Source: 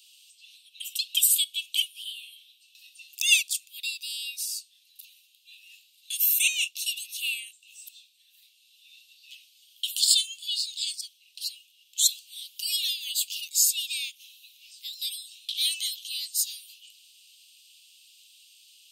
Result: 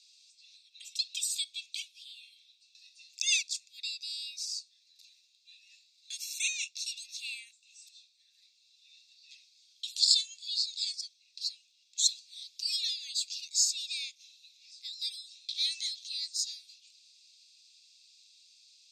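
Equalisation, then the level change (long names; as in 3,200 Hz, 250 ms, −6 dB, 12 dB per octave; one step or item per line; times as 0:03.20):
Chebyshev low-pass filter 9,700 Hz, order 4
phaser with its sweep stopped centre 3,000 Hz, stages 6
0.0 dB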